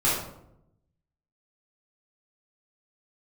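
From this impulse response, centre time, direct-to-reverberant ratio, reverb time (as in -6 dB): 56 ms, -9.0 dB, 0.80 s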